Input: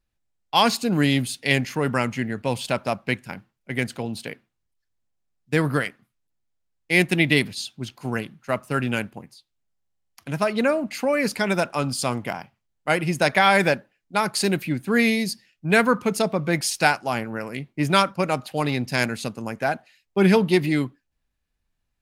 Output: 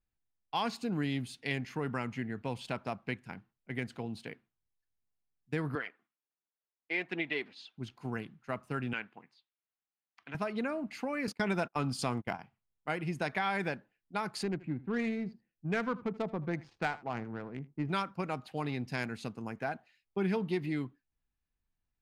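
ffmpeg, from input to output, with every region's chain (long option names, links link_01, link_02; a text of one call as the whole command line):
ffmpeg -i in.wav -filter_complex "[0:a]asettb=1/sr,asplit=3[link_01][link_02][link_03];[link_01]atrim=end=5.754[link_04];[link_02]atrim=start=5.75:end=7.78,asetpts=PTS-STARTPTS,afade=type=in:duration=0.004:curve=qsin,afade=type=out:start_time=2.026:duration=0.004:curve=qsin,highpass=400,lowpass=3400,aphaser=in_gain=1:out_gain=1:delay=3.9:decay=0.36:speed=1.4:type=triangular[link_05];[link_03]atrim=start=7.776[link_06];[link_04][link_05]acrossfade=duration=0.004:curve1=hsin:curve2=qsin[link_07];[link_07][link_06]acrossfade=duration=0.004:curve1=qsin:curve2=hsin,asettb=1/sr,asplit=3[link_08][link_09][link_10];[link_08]atrim=end=8.934[link_11];[link_09]atrim=start=8.93:end=10.35,asetpts=PTS-STARTPTS,afade=type=in:duration=0.004:curve=qsin,afade=type=out:start_time=1.416:duration=0.004:curve=qsin,highpass=170,lowpass=2500,tiltshelf=frequency=920:gain=-9[link_12];[link_10]atrim=start=10.346[link_13];[link_11][link_12]acrossfade=duration=0.004:curve1=hsin:curve2=qsin[link_14];[link_14][link_13]acrossfade=duration=0.004:curve1=qsin:curve2=hsin,asettb=1/sr,asplit=3[link_15][link_16][link_17];[link_15]atrim=end=11.274[link_18];[link_16]atrim=start=11.27:end=12.39,asetpts=PTS-STARTPTS,afade=type=in:duration=0.004:curve=qsin,afade=type=out:start_time=1.116:duration=0.004:curve=qsin,agate=range=-32dB:threshold=-31dB:ratio=16:release=100:detection=peak,acontrast=69[link_19];[link_17]atrim=start=12.386[link_20];[link_18][link_19]acrossfade=duration=0.004:curve1=hsin:curve2=qsin[link_21];[link_21][link_20]acrossfade=duration=0.004:curve1=qsin:curve2=hsin,asettb=1/sr,asplit=3[link_22][link_23][link_24];[link_22]atrim=end=14.434[link_25];[link_23]atrim=start=14.43:end=17.89,asetpts=PTS-STARTPTS,afade=type=in:duration=0.004:curve=qsin,afade=type=out:start_time=3.456:duration=0.004:curve=qsin,lowpass=9500,adynamicsmooth=sensitivity=1:basefreq=850,aecho=1:1:79:0.0944,atrim=end_sample=152586[link_26];[link_24]atrim=start=17.886[link_27];[link_25][link_26]acrossfade=duration=0.004:curve1=hsin:curve2=qsin[link_28];[link_28][link_27]acrossfade=duration=0.004:curve1=qsin:curve2=hsin,lowpass=frequency=2600:poles=1,equalizer=frequency=570:width=7.3:gain=-8,acompressor=threshold=-24dB:ratio=2,volume=-8.5dB" out.wav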